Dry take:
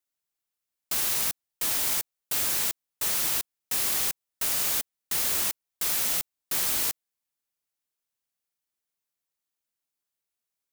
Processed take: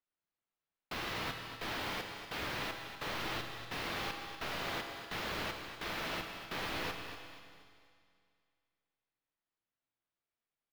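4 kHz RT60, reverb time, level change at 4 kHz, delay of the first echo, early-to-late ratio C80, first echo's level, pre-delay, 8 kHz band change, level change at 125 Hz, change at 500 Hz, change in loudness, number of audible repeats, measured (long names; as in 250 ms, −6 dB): 2.2 s, 2.2 s, −8.0 dB, 242 ms, 5.5 dB, −10.5 dB, 6 ms, −25.0 dB, +1.5 dB, +0.5 dB, −14.0 dB, 3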